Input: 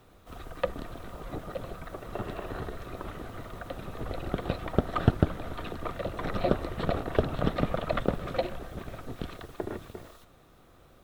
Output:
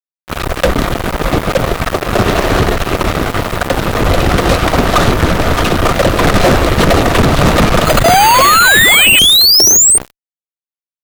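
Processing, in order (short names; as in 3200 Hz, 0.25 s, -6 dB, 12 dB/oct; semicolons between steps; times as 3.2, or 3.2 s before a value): 8.04–9.98 painted sound rise 650–8900 Hz -26 dBFS; fuzz box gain 39 dB, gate -41 dBFS; 7.85–9.19 careless resampling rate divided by 8×, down none, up hold; gain +7.5 dB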